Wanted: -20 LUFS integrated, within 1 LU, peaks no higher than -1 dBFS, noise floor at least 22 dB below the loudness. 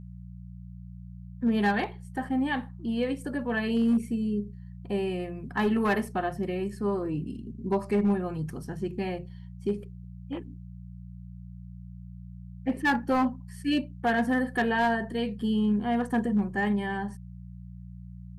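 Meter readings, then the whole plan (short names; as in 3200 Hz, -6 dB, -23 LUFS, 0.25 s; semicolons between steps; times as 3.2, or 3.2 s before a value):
clipped 0.5%; flat tops at -18.5 dBFS; hum 60 Hz; harmonics up to 180 Hz; hum level -40 dBFS; loudness -29.0 LUFS; peak -18.5 dBFS; loudness target -20.0 LUFS
-> clip repair -18.5 dBFS; de-hum 60 Hz, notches 3; gain +9 dB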